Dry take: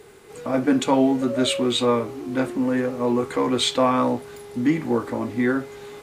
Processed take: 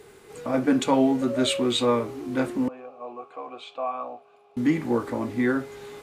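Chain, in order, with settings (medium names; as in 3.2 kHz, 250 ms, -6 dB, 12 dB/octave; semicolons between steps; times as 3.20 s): 2.68–4.57 s: vowel filter a; trim -2 dB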